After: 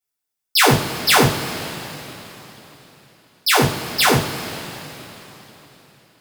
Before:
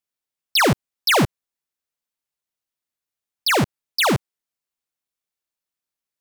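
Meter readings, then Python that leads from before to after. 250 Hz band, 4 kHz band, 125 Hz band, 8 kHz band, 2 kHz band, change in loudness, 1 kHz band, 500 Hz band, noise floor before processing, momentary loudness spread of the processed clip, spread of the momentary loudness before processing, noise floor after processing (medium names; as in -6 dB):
+2.0 dB, +3.5 dB, +4.0 dB, +6.5 dB, +3.5 dB, +2.5 dB, +4.0 dB, +3.0 dB, under -85 dBFS, 20 LU, 7 LU, -81 dBFS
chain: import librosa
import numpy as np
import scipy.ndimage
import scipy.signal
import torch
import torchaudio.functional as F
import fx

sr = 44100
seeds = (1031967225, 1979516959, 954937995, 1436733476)

y = fx.high_shelf(x, sr, hz=6900.0, db=6.5)
y = fx.rev_double_slope(y, sr, seeds[0], early_s=0.29, late_s=3.9, knee_db=-18, drr_db=-8.5)
y = y * 10.0 ** (-6.0 / 20.0)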